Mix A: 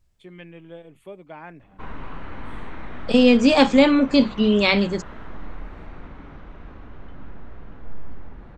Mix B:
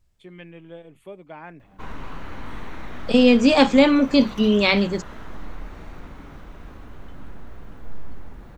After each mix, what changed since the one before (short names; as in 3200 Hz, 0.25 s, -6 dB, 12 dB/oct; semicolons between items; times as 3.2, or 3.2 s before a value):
background: remove LPF 3100 Hz 12 dB/oct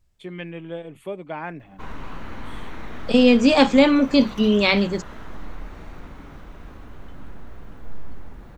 first voice +8.0 dB